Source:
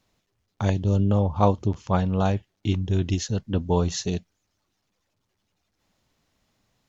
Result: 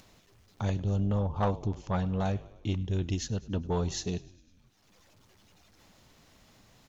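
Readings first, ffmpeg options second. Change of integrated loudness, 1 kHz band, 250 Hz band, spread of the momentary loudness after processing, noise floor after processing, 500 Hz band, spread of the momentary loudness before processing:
-7.0 dB, -8.0 dB, -7.5 dB, 6 LU, -64 dBFS, -8.0 dB, 7 LU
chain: -filter_complex "[0:a]asplit=6[s0][s1][s2][s3][s4][s5];[s1]adelay=101,afreqshift=-43,volume=0.0891[s6];[s2]adelay=202,afreqshift=-86,volume=0.0525[s7];[s3]adelay=303,afreqshift=-129,volume=0.0309[s8];[s4]adelay=404,afreqshift=-172,volume=0.0184[s9];[s5]adelay=505,afreqshift=-215,volume=0.0108[s10];[s0][s6][s7][s8][s9][s10]amix=inputs=6:normalize=0,acompressor=mode=upward:threshold=0.0112:ratio=2.5,asoftclip=type=tanh:threshold=0.2,volume=0.531"

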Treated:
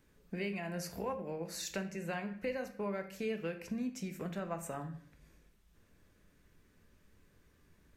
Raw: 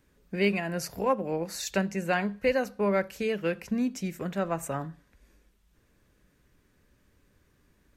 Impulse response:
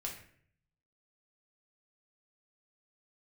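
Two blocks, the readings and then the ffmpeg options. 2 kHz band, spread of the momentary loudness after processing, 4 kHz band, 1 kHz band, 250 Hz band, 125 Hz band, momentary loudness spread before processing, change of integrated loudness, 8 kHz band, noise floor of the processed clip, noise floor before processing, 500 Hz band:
-11.0 dB, 4 LU, -8.5 dB, -11.5 dB, -9.5 dB, -8.5 dB, 7 LU, -10.0 dB, -7.0 dB, -68 dBFS, -67 dBFS, -11.0 dB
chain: -filter_complex "[0:a]acompressor=threshold=0.0126:ratio=2.5,asplit=2[s0][s1];[1:a]atrim=start_sample=2205[s2];[s1][s2]afir=irnorm=-1:irlink=0,volume=1.12[s3];[s0][s3]amix=inputs=2:normalize=0,volume=0.447"

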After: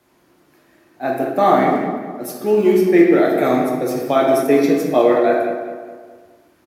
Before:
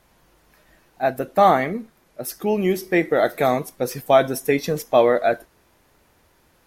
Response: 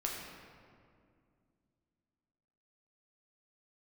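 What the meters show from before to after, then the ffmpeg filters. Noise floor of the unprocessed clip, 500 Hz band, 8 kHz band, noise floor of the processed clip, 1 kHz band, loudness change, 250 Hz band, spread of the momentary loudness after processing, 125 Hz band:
-60 dBFS, +4.5 dB, -1.0 dB, -57 dBFS, +2.0 dB, +4.0 dB, +9.0 dB, 14 LU, +1.5 dB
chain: -filter_complex "[0:a]highpass=100,equalizer=f=310:t=o:w=0.63:g=10,acrossover=split=160|1300[s0][s1][s2];[s0]acrusher=samples=28:mix=1:aa=0.000001:lfo=1:lforange=16.8:lforate=2[s3];[s3][s1][s2]amix=inputs=3:normalize=0,asplit=2[s4][s5];[s5]adelay=208,lowpass=f=2700:p=1,volume=0.376,asplit=2[s6][s7];[s7]adelay=208,lowpass=f=2700:p=1,volume=0.46,asplit=2[s8][s9];[s9]adelay=208,lowpass=f=2700:p=1,volume=0.46,asplit=2[s10][s11];[s11]adelay=208,lowpass=f=2700:p=1,volume=0.46,asplit=2[s12][s13];[s13]adelay=208,lowpass=f=2700:p=1,volume=0.46[s14];[s4][s6][s8][s10][s12][s14]amix=inputs=6:normalize=0[s15];[1:a]atrim=start_sample=2205,afade=t=out:st=0.26:d=0.01,atrim=end_sample=11907[s16];[s15][s16]afir=irnorm=-1:irlink=0,volume=0.841"

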